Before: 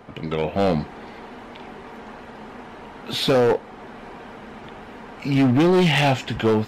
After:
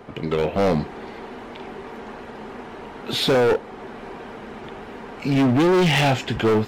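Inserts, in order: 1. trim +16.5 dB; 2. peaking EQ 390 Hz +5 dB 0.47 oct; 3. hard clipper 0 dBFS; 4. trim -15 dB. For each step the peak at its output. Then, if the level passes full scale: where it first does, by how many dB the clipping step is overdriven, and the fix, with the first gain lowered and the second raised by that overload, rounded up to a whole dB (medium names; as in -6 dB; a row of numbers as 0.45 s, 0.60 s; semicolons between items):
+3.0 dBFS, +8.0 dBFS, 0.0 dBFS, -15.0 dBFS; step 1, 8.0 dB; step 1 +8.5 dB, step 4 -7 dB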